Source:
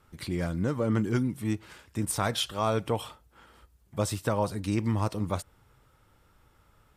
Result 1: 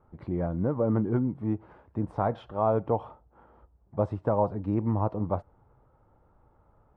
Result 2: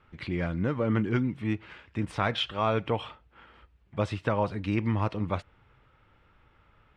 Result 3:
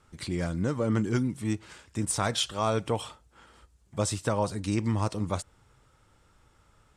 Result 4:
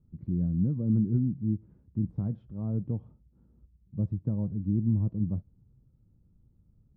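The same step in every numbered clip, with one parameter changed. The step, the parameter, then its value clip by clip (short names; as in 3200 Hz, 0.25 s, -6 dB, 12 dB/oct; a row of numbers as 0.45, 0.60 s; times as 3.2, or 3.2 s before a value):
synth low-pass, frequency: 810, 2600, 7900, 190 Hz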